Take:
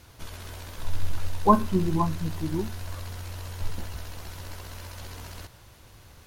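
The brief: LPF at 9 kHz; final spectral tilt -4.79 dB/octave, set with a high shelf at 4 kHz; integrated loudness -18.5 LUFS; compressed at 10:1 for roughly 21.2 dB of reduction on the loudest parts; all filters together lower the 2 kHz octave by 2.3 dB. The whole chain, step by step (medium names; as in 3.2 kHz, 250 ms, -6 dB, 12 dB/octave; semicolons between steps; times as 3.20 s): low-pass 9 kHz; peaking EQ 2 kHz -4 dB; treble shelf 4 kHz +3.5 dB; compression 10:1, threshold -35 dBFS; trim +24.5 dB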